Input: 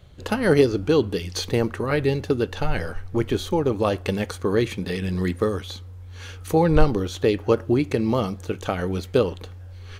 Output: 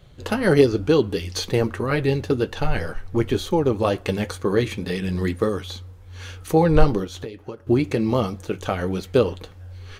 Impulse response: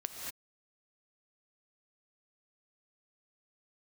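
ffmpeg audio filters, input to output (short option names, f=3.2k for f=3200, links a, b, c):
-filter_complex "[0:a]asettb=1/sr,asplit=3[a][b][c];[a]atrim=end=7.044[d];[b]atrim=start=7.04:end=7.67,asetpts=PTS-STARTPTS,afade=t=in:d=0.004:c=qsin,afade=t=out:st=0.626:d=0.004:c=qsin,acompressor=threshold=-31dB:ratio=20[e];[c]atrim=start=7.666[f];[d][e]acrossfade=d=0.004:c1=hsin:c2=qsin[g];[g][f]acrossfade=d=0.004:c1=qsin:c2=hsin,flanger=delay=5.1:depth=3.9:regen=-52:speed=2:shape=triangular,volume=5dB"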